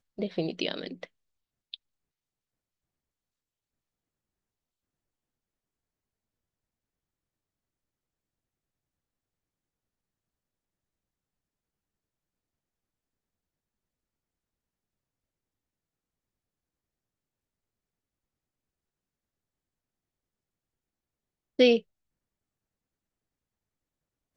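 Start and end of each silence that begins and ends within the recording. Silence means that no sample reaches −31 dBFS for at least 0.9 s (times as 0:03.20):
0:01.74–0:21.59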